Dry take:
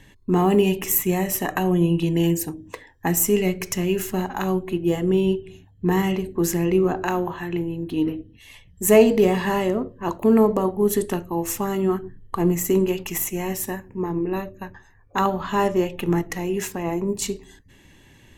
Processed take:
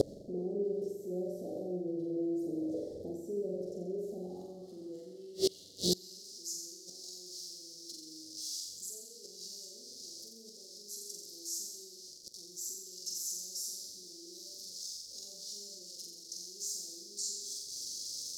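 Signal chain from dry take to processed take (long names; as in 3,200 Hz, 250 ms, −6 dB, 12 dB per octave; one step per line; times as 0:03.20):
converter with a step at zero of −21.5 dBFS
elliptic band-stop filter 500–4,600 Hz, stop band 40 dB
in parallel at −1 dB: downward compressor, threshold −25 dBFS, peak gain reduction 15 dB
on the sum: brickwall limiter −14 dBFS, peak gain reduction 11 dB
band-pass filter sweep 600 Hz → 5,400 Hz, 0:04.01–0:06.18
on a send: flutter between parallel walls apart 7.6 metres, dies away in 0.95 s
on the sum: gate with flip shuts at −33 dBFS, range −27 dB
level +18 dB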